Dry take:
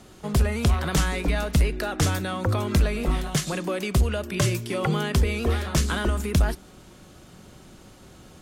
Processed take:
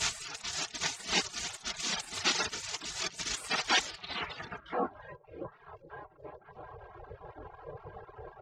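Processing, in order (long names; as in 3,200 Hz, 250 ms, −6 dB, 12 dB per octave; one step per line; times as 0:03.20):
sign of each sample alone
three-way crossover with the lows and the highs turned down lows −20 dB, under 190 Hz, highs −22 dB, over 5,700 Hz
comb filter 3.7 ms, depth 85%
echo machine with several playback heads 231 ms, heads first and third, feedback 65%, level −23 dB
low-pass filter sweep 6,200 Hz → 240 Hz, 0:03.80–0:05.30
reverb reduction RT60 0.57 s
high-pass filter 47 Hz
reverb reduction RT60 0.91 s
hollow resonant body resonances 550/1,000/1,600 Hz, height 12 dB, ringing for 65 ms
gate on every frequency bin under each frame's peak −25 dB weak
0:04.60–0:05.00: micro pitch shift up and down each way 40 cents
level +5 dB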